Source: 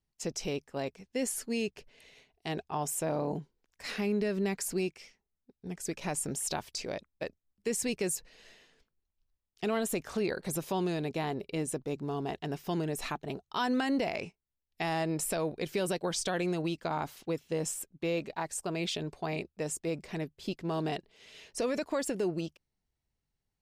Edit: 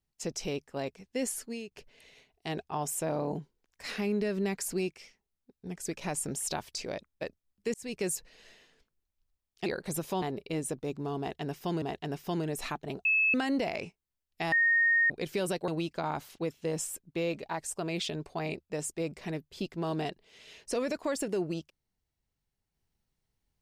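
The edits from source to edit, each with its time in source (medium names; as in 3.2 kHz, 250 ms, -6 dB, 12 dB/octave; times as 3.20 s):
1.29–1.71 s: fade out, to -15 dB
7.74–8.03 s: fade in
9.66–10.25 s: delete
10.81–11.25 s: delete
12.22–12.85 s: loop, 2 plays
13.45–13.74 s: bleep 2.6 kHz -22.5 dBFS
14.92–15.50 s: bleep 1.85 kHz -21.5 dBFS
16.08–16.55 s: delete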